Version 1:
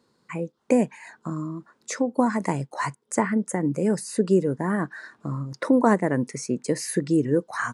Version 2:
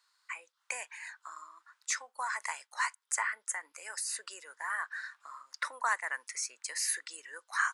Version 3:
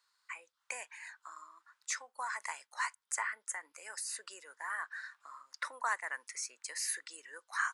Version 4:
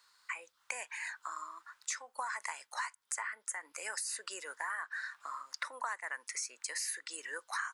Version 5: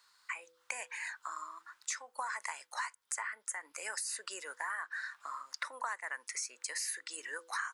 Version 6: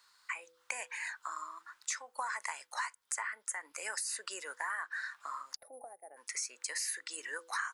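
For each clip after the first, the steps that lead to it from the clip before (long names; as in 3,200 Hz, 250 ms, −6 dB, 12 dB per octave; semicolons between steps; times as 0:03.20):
high-pass filter 1,200 Hz 24 dB per octave
low-shelf EQ 370 Hz +6.5 dB; level −4 dB
downward compressor 5 to 1, threshold −46 dBFS, peak gain reduction 16 dB; level +9.5 dB
hum removal 166.3 Hz, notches 3
gain on a spectral selection 0:05.55–0:06.17, 860–9,300 Hz −30 dB; level +1 dB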